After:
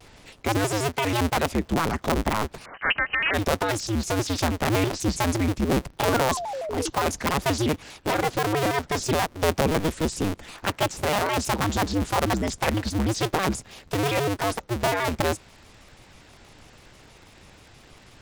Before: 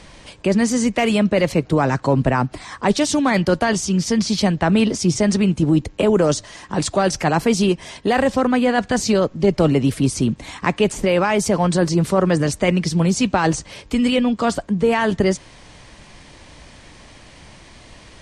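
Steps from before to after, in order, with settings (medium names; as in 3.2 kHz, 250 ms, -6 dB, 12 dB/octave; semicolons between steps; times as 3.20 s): cycle switcher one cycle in 2, inverted; 2.66–3.34 s: frequency inversion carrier 2.6 kHz; 6.09–6.90 s: painted sound fall 370–1400 Hz -24 dBFS; vibrato with a chosen wave square 6.2 Hz, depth 250 cents; trim -7 dB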